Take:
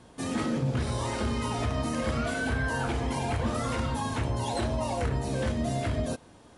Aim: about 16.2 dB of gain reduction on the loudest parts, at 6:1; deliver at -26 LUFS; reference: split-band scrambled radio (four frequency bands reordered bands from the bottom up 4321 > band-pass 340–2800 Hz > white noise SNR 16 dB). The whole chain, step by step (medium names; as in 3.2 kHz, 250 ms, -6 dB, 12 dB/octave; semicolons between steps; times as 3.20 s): compression 6:1, threshold -43 dBFS; four frequency bands reordered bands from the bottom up 4321; band-pass 340–2800 Hz; white noise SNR 16 dB; trim +24.5 dB